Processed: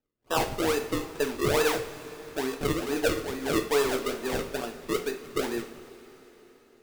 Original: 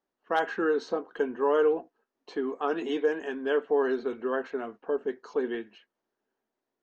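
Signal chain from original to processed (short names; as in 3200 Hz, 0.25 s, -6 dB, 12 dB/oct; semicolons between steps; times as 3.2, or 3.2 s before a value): half-wave gain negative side -3 dB; decimation with a swept rate 39×, swing 100% 2.3 Hz; two-slope reverb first 0.38 s, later 4.2 s, from -18 dB, DRR 3 dB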